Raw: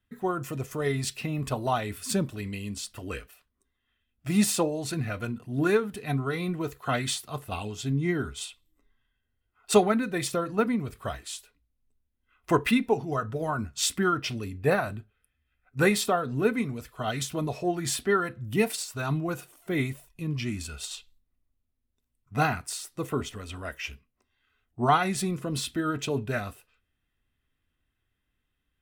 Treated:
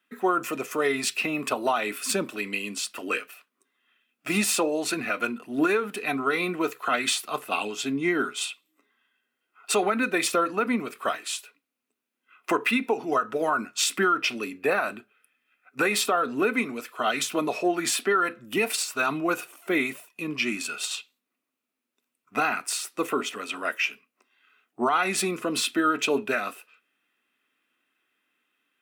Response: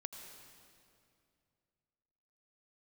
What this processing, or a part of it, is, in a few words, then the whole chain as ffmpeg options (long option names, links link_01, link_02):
laptop speaker: -af "highpass=frequency=250:width=0.5412,highpass=frequency=250:width=1.3066,equalizer=frequency=1300:width_type=o:width=0.55:gain=6,equalizer=frequency=2500:width_type=o:width=0.39:gain=8,alimiter=limit=-19.5dB:level=0:latency=1:release=121,volume=5.5dB"